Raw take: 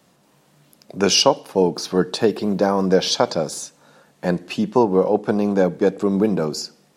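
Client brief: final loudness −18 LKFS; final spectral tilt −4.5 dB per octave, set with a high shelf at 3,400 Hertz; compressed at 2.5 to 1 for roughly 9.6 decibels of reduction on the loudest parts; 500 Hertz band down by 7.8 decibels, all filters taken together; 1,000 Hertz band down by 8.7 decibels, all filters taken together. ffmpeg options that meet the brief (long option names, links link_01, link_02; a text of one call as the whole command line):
ffmpeg -i in.wav -af "equalizer=frequency=500:width_type=o:gain=-7.5,equalizer=frequency=1000:width_type=o:gain=-8,highshelf=frequency=3400:gain=-4,acompressor=threshold=-31dB:ratio=2.5,volume=14.5dB" out.wav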